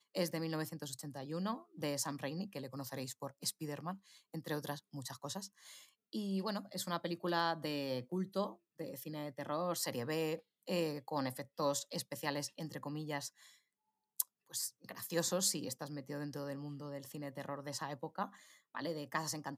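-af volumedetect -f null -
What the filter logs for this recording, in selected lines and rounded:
mean_volume: -41.1 dB
max_volume: -8.5 dB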